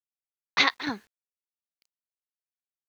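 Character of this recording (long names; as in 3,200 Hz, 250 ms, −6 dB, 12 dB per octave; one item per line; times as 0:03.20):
chopped level 2.3 Hz, depth 60%, duty 70%
a quantiser's noise floor 10 bits, dither none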